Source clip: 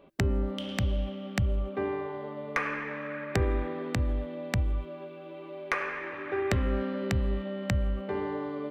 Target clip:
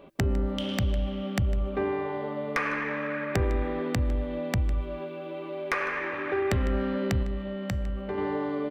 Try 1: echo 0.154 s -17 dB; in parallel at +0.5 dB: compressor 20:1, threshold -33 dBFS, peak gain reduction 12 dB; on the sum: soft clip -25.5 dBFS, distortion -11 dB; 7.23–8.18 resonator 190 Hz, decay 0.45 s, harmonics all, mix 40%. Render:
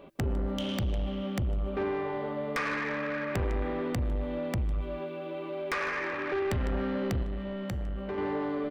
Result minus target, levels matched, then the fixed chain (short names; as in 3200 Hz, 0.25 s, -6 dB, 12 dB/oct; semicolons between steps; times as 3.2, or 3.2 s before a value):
soft clip: distortion +10 dB
echo 0.154 s -17 dB; in parallel at +0.5 dB: compressor 20:1, threshold -33 dBFS, peak gain reduction 12 dB; on the sum: soft clip -16.5 dBFS, distortion -21 dB; 7.23–8.18 resonator 190 Hz, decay 0.45 s, harmonics all, mix 40%